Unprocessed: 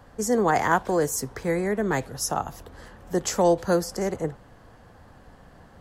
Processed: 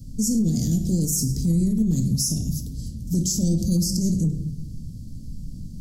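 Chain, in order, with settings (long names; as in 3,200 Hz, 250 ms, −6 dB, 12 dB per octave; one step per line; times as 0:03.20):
in parallel at −5.5 dB: soft clipping −24 dBFS, distortion −8 dB
on the sum: elliptic band-stop filter 220–5,200 Hz, stop band 80 dB
low-shelf EQ 430 Hz +5 dB
on a send at −5.5 dB: convolution reverb RT60 0.80 s, pre-delay 7 ms
on the sum: brickwall limiter −22.5 dBFS, peak gain reduction 10.5 dB
flat-topped bell 930 Hz +11 dB
mains-hum notches 50/100/150/200 Hz
level +8.5 dB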